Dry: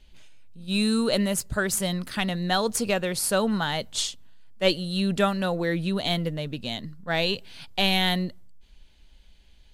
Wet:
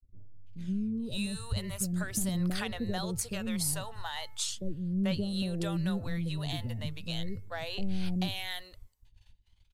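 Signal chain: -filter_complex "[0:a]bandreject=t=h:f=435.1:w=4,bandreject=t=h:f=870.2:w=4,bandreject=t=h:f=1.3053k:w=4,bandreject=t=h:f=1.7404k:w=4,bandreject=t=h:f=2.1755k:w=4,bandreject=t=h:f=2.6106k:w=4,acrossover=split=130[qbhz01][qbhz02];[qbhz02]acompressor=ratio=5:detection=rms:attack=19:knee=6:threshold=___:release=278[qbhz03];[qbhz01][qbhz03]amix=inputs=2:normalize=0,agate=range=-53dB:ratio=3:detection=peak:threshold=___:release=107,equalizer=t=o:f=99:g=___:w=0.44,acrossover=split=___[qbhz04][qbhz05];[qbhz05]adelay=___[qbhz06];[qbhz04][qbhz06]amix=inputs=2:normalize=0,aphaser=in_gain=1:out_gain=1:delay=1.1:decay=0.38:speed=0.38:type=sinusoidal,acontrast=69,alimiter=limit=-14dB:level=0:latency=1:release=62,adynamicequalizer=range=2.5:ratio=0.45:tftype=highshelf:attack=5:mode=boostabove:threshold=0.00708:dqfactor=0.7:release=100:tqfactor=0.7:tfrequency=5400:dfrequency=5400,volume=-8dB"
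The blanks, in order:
-33dB, -43dB, 13.5, 490, 440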